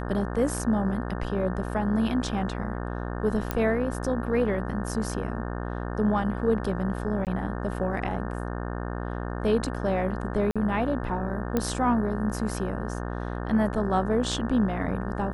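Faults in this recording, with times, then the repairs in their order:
buzz 60 Hz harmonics 30 -32 dBFS
3.51 s: pop -12 dBFS
7.25–7.27 s: dropout 18 ms
10.51–10.56 s: dropout 46 ms
11.57 s: pop -12 dBFS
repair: de-click; de-hum 60 Hz, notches 30; interpolate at 7.25 s, 18 ms; interpolate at 10.51 s, 46 ms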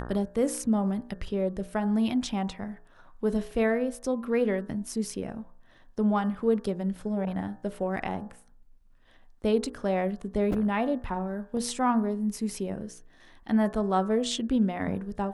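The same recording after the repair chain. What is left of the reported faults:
nothing left

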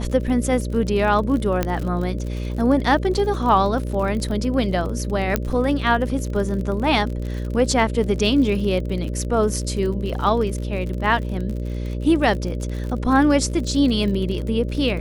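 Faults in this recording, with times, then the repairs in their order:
buzz 60 Hz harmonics 10 -26 dBFS
crackle 45 per s -28 dBFS
1.63 s: pop -7 dBFS
5.36 s: pop -5 dBFS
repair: de-click; de-hum 60 Hz, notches 10

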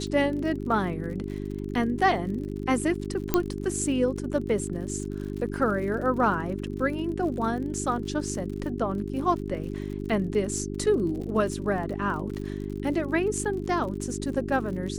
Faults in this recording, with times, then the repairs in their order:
crackle 54 per s -36 dBFS
hum 50 Hz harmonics 8 -33 dBFS
3.34 s: pop -7 dBFS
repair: de-click; de-hum 50 Hz, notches 8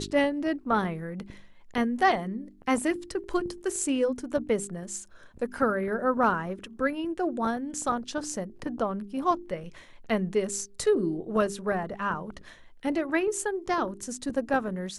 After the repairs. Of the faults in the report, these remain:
3.34 s: pop

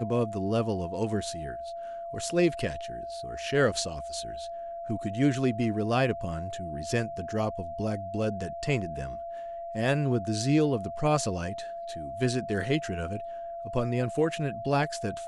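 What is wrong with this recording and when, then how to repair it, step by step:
whine 680 Hz -35 dBFS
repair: band-stop 680 Hz, Q 30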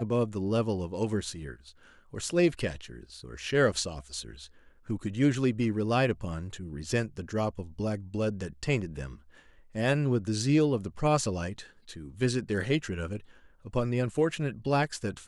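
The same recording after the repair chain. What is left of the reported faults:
nothing left

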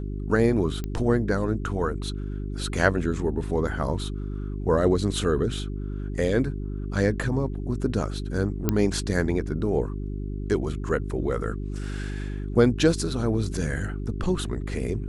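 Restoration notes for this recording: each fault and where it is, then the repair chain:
hum 50 Hz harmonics 8 -31 dBFS
0.84 s: pop -18 dBFS
8.69 s: pop -8 dBFS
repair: de-click; de-hum 50 Hz, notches 8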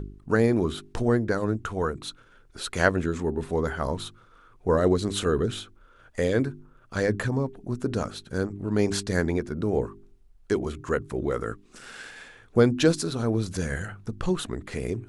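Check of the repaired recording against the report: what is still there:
nothing left

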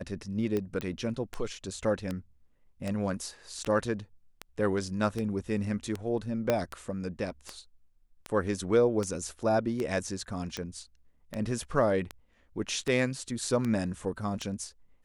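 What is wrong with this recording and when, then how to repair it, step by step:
tick 78 rpm -19 dBFS
0.81 s: pop -20 dBFS
6.50 s: pop -12 dBFS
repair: de-click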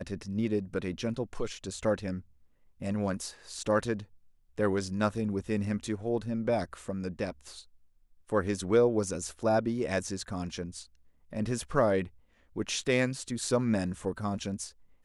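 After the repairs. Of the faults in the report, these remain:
6.50 s: pop

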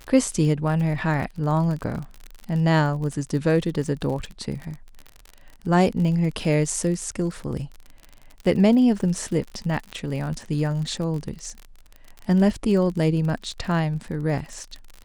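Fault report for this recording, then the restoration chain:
crackle 45 per s -30 dBFS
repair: de-click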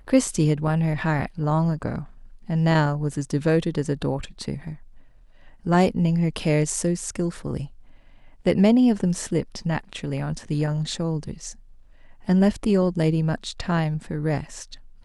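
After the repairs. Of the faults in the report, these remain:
nothing left

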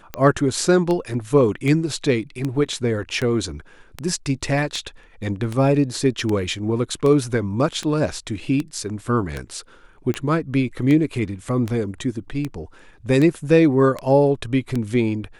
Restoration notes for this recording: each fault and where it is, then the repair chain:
tick 78 rpm -12 dBFS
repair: de-click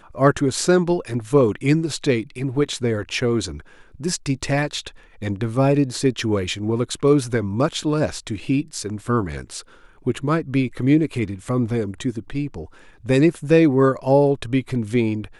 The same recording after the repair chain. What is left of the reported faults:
nothing left

